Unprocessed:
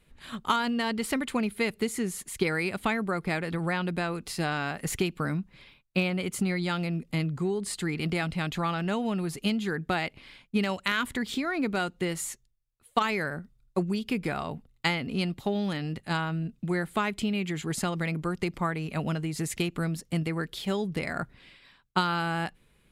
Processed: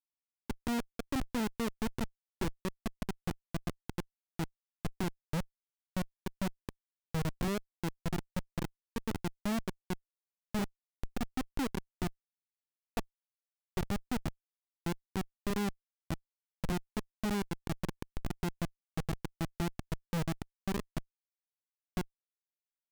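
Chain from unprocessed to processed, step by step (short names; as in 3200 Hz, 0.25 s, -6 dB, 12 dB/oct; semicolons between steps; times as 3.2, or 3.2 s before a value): spectral gate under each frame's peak -30 dB strong; running mean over 31 samples; Schmitt trigger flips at -27 dBFS; gain +1 dB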